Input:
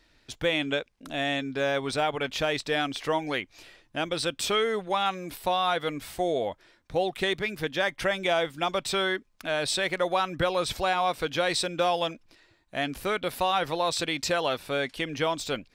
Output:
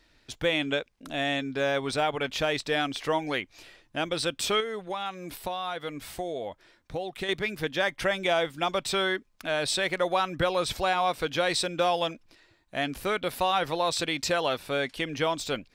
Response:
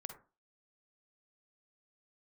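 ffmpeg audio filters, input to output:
-filter_complex "[0:a]asettb=1/sr,asplit=3[a][b][c];[a]atrim=end=4.604[d];[b]atrim=start=4.6:end=7.29,asetpts=PTS-STARTPTS,afade=t=in:d=0.004:c=qsin,afade=t=out:st=2.686:d=0.004:c=qsin,acompressor=threshold=-33dB:ratio=2.5[e];[c]atrim=start=7.286[f];[d][e]acrossfade=d=0.004:c1=hsin:c2=qsin[g];[g][f]acrossfade=d=0.004:c1=qsin:c2=hsin"

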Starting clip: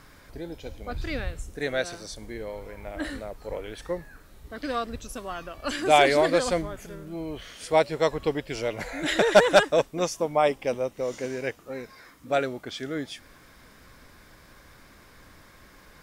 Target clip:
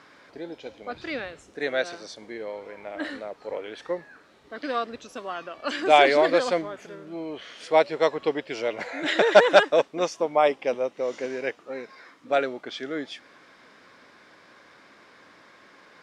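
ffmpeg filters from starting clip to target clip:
-af "highpass=280,lowpass=4.6k,volume=2dB"

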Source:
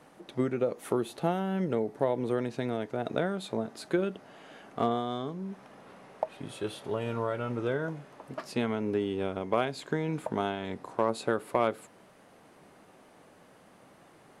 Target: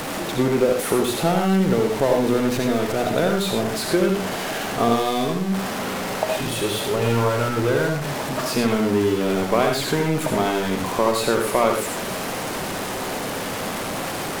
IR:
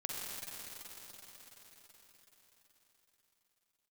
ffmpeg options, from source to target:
-filter_complex "[0:a]aeval=exprs='val(0)+0.5*0.0335*sgn(val(0))':c=same[a];[1:a]atrim=start_sample=2205,atrim=end_sample=3969,asetrate=30870,aresample=44100[b];[a][b]afir=irnorm=-1:irlink=0,volume=7.5dB"

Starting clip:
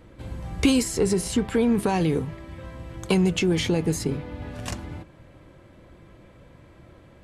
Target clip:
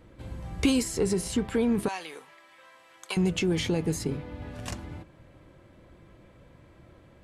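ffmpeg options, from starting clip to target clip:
-filter_complex "[0:a]asettb=1/sr,asplit=3[a][b][c];[a]atrim=end=1.884[d];[b]atrim=start=1.88:end=3.17,asetpts=PTS-STARTPTS,afade=t=in:d=0.004:c=qsin,afade=t=out:st=1.286:d=0.004:c=qsin,highpass=1k[e];[c]atrim=start=3.166[f];[d][e]acrossfade=d=0.004:c1=hsin:c2=qsin[g];[g][f]acrossfade=d=0.004:c1=qsin:c2=hsin,volume=-4dB"

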